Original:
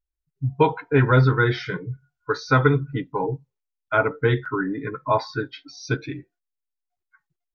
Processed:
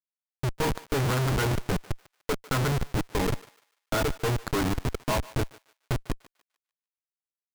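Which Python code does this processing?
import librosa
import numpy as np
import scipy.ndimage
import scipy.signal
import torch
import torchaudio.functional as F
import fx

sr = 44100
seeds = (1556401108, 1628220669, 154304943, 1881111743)

y = fx.schmitt(x, sr, flips_db=-23.5)
y = fx.echo_thinned(y, sr, ms=148, feedback_pct=32, hz=840.0, wet_db=-17.0)
y = F.gain(torch.from_numpy(y), -1.0).numpy()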